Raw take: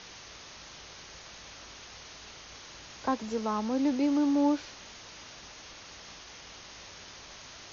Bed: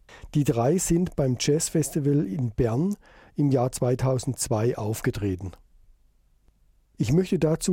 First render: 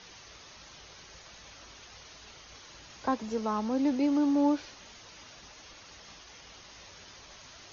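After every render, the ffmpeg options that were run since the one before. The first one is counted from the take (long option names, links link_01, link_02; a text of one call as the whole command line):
ffmpeg -i in.wav -af "afftdn=noise_reduction=6:noise_floor=-49" out.wav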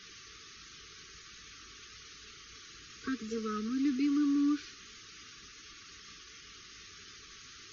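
ffmpeg -i in.wav -af "afftfilt=real='re*(1-between(b*sr/4096,470,1100))':imag='im*(1-between(b*sr/4096,470,1100))':win_size=4096:overlap=0.75,lowshelf=frequency=390:gain=-4" out.wav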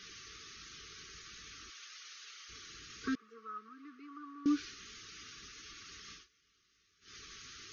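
ffmpeg -i in.wav -filter_complex "[0:a]asettb=1/sr,asplit=3[link_01][link_02][link_03];[link_01]atrim=end=1.704[link_04];[link_02]atrim=start=1.7:end=2.49,asetpts=PTS-STARTPTS,afade=type=in:duration=0.004:curve=qsin,afade=type=out:start_time=0.786:duration=0.004:curve=qsin,highpass=940[link_05];[link_03]atrim=start=2.486[link_06];[link_04][link_05]acrossfade=duration=0.004:curve1=hsin:curve2=qsin[link_07];[link_07][link_06]acrossfade=duration=0.004:curve1=qsin:curve2=hsin,asettb=1/sr,asplit=3[link_08][link_09][link_10];[link_08]atrim=end=3.154[link_11];[link_09]atrim=start=3.15:end=4.46,asetpts=PTS-STARTPTS,afade=type=in:duration=0.004:curve=qsin,afade=type=out:start_time=1.306:duration=0.004:curve=qsin,bandpass=frequency=1100:width_type=q:width=4.2[link_12];[link_10]atrim=start=4.456[link_13];[link_11][link_12]acrossfade=duration=0.004:curve1=hsin:curve2=qsin[link_14];[link_14][link_13]acrossfade=duration=0.004:curve1=qsin:curve2=hsin,asplit=3[link_15][link_16][link_17];[link_15]atrim=end=6.28,asetpts=PTS-STARTPTS,afade=type=out:start_time=6.13:duration=0.15:silence=0.0794328[link_18];[link_16]atrim=start=6.28:end=7.01,asetpts=PTS-STARTPTS,volume=-22dB[link_19];[link_17]atrim=start=7.01,asetpts=PTS-STARTPTS,afade=type=in:duration=0.15:silence=0.0794328[link_20];[link_18][link_19][link_20]concat=n=3:v=0:a=1" out.wav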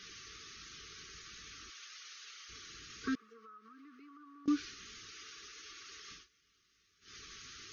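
ffmpeg -i in.wav -filter_complex "[0:a]asettb=1/sr,asplit=3[link_01][link_02][link_03];[link_01]atrim=end=3.324[link_04];[link_02]atrim=start=3.32:end=4.48,asetpts=PTS-STARTPTS,afade=type=in:duration=0.004:curve=qsin,afade=type=out:start_time=1.156:duration=0.004:curve=qsin,acompressor=threshold=-53dB:ratio=6:attack=3.2:release=140:knee=1:detection=peak[link_05];[link_03]atrim=start=4.476[link_06];[link_04][link_05]acrossfade=duration=0.004:curve1=hsin:curve2=qsin[link_07];[link_07][link_06]acrossfade=duration=0.004:curve1=qsin:curve2=hsin,asettb=1/sr,asplit=3[link_08][link_09][link_10];[link_08]atrim=end=5.114[link_11];[link_09]atrim=start=5.11:end=6.11,asetpts=PTS-STARTPTS,afade=type=in:duration=0.004:curve=qsin,afade=type=out:start_time=0.996:duration=0.004:curve=qsin,lowshelf=frequency=300:width_type=q:width=1.5:gain=-9[link_12];[link_10]atrim=start=6.106[link_13];[link_11][link_12]acrossfade=duration=0.004:curve1=hsin:curve2=qsin[link_14];[link_14][link_13]acrossfade=duration=0.004:curve1=qsin:curve2=hsin" out.wav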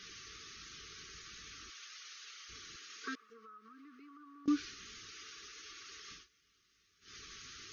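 ffmpeg -i in.wav -filter_complex "[0:a]asettb=1/sr,asplit=3[link_01][link_02][link_03];[link_01]atrim=end=2.764[link_04];[link_02]atrim=start=2.76:end=3.3,asetpts=PTS-STARTPTS,afade=type=in:duration=0.004:curve=qsin,afade=type=out:start_time=0.536:duration=0.004:curve=qsin,highpass=490[link_05];[link_03]atrim=start=3.296[link_06];[link_04][link_05]acrossfade=duration=0.004:curve1=hsin:curve2=qsin[link_07];[link_07][link_06]acrossfade=duration=0.004:curve1=qsin:curve2=hsin" out.wav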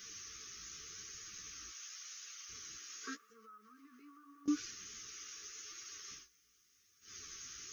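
ffmpeg -i in.wav -af "flanger=delay=8.5:depth=8.6:regen=26:speed=0.86:shape=sinusoidal,aexciter=amount=3.9:drive=6.9:freq=5800" out.wav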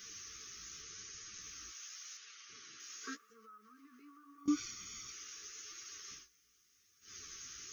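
ffmpeg -i in.wav -filter_complex "[0:a]asettb=1/sr,asplit=3[link_01][link_02][link_03];[link_01]atrim=end=0.824[link_04];[link_02]atrim=start=0.82:end=1.41,asetpts=PTS-STARTPTS,afade=type=in:duration=0.004:curve=qsin,afade=type=out:start_time=0.586:duration=0.004:curve=qsin,lowpass=frequency=8400:width=0.5412,lowpass=frequency=8400:width=1.3066[link_05];[link_03]atrim=start=1.406[link_06];[link_04][link_05]acrossfade=duration=0.004:curve1=hsin:curve2=qsin[link_07];[link_07][link_06]acrossfade=duration=0.004:curve1=qsin:curve2=hsin,asettb=1/sr,asplit=3[link_08][link_09][link_10];[link_08]atrim=end=2.174[link_11];[link_09]atrim=start=2.17:end=2.8,asetpts=PTS-STARTPTS,afade=type=in:duration=0.004:curve=qsin,afade=type=out:start_time=0.626:duration=0.004:curve=qsin,highpass=160,lowpass=4600[link_12];[link_10]atrim=start=2.796[link_13];[link_11][link_12]acrossfade=duration=0.004:curve1=hsin:curve2=qsin[link_14];[link_14][link_13]acrossfade=duration=0.004:curve1=qsin:curve2=hsin,asettb=1/sr,asplit=3[link_15][link_16][link_17];[link_15]atrim=end=4.384[link_18];[link_16]atrim=start=4.38:end=5.12,asetpts=PTS-STARTPTS,afade=type=in:duration=0.004:curve=qsin,afade=type=out:start_time=0.736:duration=0.004:curve=qsin,aecho=1:1:0.9:0.69,atrim=end_sample=32634[link_19];[link_17]atrim=start=5.116[link_20];[link_18][link_19]acrossfade=duration=0.004:curve1=hsin:curve2=qsin[link_21];[link_21][link_20]acrossfade=duration=0.004:curve1=qsin:curve2=hsin" out.wav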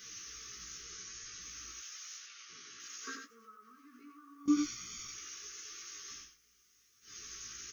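ffmpeg -i in.wav -filter_complex "[0:a]asplit=2[link_01][link_02];[link_02]adelay=17,volume=-3.5dB[link_03];[link_01][link_03]amix=inputs=2:normalize=0,asplit=2[link_04][link_05];[link_05]aecho=0:1:92:0.501[link_06];[link_04][link_06]amix=inputs=2:normalize=0" out.wav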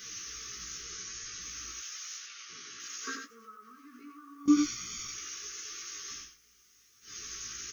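ffmpeg -i in.wav -af "volume=5.5dB" out.wav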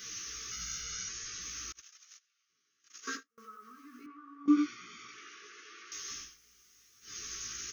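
ffmpeg -i in.wav -filter_complex "[0:a]asettb=1/sr,asplit=3[link_01][link_02][link_03];[link_01]atrim=end=0.514[link_04];[link_02]atrim=start=0.51:end=1.09,asetpts=PTS-STARTPTS,afade=type=in:duration=0.004:curve=qsin,afade=type=out:start_time=0.576:duration=0.004:curve=qsin,aecho=1:1:1.4:0.8,atrim=end_sample=25578[link_05];[link_03]atrim=start=1.086[link_06];[link_04][link_05]acrossfade=duration=0.004:curve1=hsin:curve2=qsin[link_07];[link_07][link_06]acrossfade=duration=0.004:curve1=qsin:curve2=hsin,asettb=1/sr,asplit=3[link_08][link_09][link_10];[link_08]atrim=end=1.724[link_11];[link_09]atrim=start=1.72:end=3.38,asetpts=PTS-STARTPTS,afade=type=in:duration=0.004:curve=qsin,afade=type=out:start_time=1.656:duration=0.004:curve=qsin,agate=range=-32dB:threshold=-41dB:ratio=16:release=100:detection=peak[link_12];[link_10]atrim=start=3.376[link_13];[link_11][link_12]acrossfade=duration=0.004:curve1=hsin:curve2=qsin[link_14];[link_14][link_13]acrossfade=duration=0.004:curve1=qsin:curve2=hsin,asettb=1/sr,asplit=3[link_15][link_16][link_17];[link_15]atrim=end=4.064[link_18];[link_16]atrim=start=4.06:end=5.92,asetpts=PTS-STARTPTS,afade=type=in:duration=0.004:curve=qsin,afade=type=out:start_time=1.856:duration=0.004:curve=qsin,highpass=250,lowpass=2400[link_19];[link_17]atrim=start=5.916[link_20];[link_18][link_19]acrossfade=duration=0.004:curve1=hsin:curve2=qsin[link_21];[link_21][link_20]acrossfade=duration=0.004:curve1=qsin:curve2=hsin" out.wav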